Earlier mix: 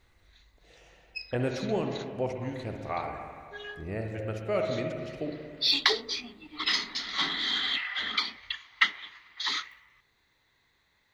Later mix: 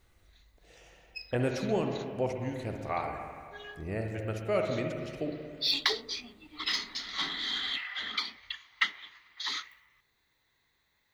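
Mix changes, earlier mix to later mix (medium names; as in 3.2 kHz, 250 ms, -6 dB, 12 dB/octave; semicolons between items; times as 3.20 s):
background -5.0 dB; master: add treble shelf 9.5 kHz +10.5 dB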